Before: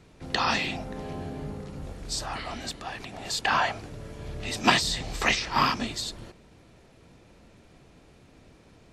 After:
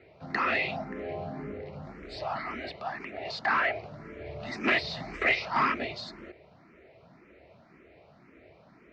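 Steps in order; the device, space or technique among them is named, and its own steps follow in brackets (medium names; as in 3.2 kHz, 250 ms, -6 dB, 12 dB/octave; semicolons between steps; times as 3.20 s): barber-pole phaser into a guitar amplifier (barber-pole phaser +1.9 Hz; saturation -22.5 dBFS, distortion -11 dB; cabinet simulation 85–4200 Hz, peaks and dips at 110 Hz -4 dB, 380 Hz +5 dB, 640 Hz +9 dB, 1.3 kHz +4 dB, 2.1 kHz +9 dB, 3.4 kHz -8 dB)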